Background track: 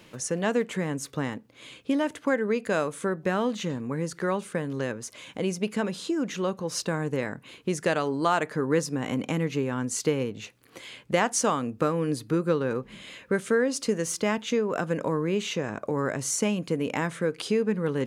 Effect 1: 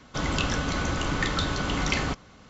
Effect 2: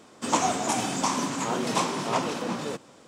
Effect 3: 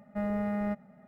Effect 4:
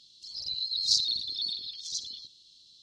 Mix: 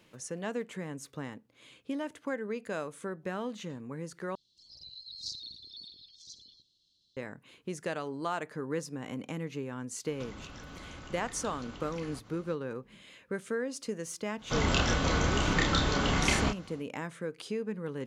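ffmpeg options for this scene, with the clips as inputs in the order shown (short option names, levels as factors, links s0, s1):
-filter_complex "[1:a]asplit=2[s0][s1];[0:a]volume=0.316[s2];[4:a]tiltshelf=f=790:g=5[s3];[s0]acompressor=threshold=0.0112:ratio=6:attack=3.2:release=140:knee=1:detection=peak[s4];[s1]asplit=2[s5][s6];[s6]adelay=30,volume=0.668[s7];[s5][s7]amix=inputs=2:normalize=0[s8];[s2]asplit=2[s9][s10];[s9]atrim=end=4.354[s11];[s3]atrim=end=2.82,asetpts=PTS-STARTPTS,volume=0.299[s12];[s10]atrim=start=7.166[s13];[s4]atrim=end=2.49,asetpts=PTS-STARTPTS,volume=0.562,afade=t=in:d=0.004:c=hsin,afade=t=out:st=2.486:d=0.004:c=hsin,adelay=10060[s14];[s8]atrim=end=2.49,asetpts=PTS-STARTPTS,volume=0.794,afade=t=in:d=0.1,afade=t=out:st=2.39:d=0.1,adelay=14360[s15];[s11][s12]acrossfade=d=0.004:c1=hsin:c2=hsin[s16];[s16][s13]acrossfade=d=0.004:c1=hsin:c2=hsin[s17];[s17][s14][s15]amix=inputs=3:normalize=0"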